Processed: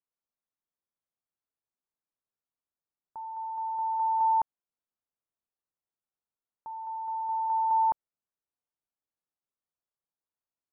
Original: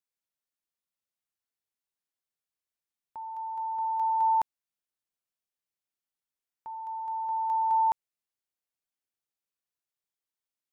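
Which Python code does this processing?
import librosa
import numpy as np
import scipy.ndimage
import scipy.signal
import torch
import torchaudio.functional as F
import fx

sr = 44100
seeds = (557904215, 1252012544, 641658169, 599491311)

y = scipy.signal.sosfilt(scipy.signal.butter(4, 1400.0, 'lowpass', fs=sr, output='sos'), x)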